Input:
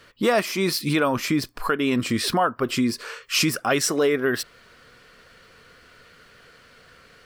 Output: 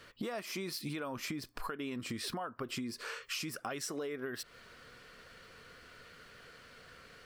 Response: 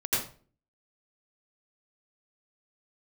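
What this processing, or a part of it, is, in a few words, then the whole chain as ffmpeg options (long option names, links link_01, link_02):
serial compression, peaks first: -af "acompressor=threshold=-29dB:ratio=5,acompressor=threshold=-35dB:ratio=2,volume=-4dB"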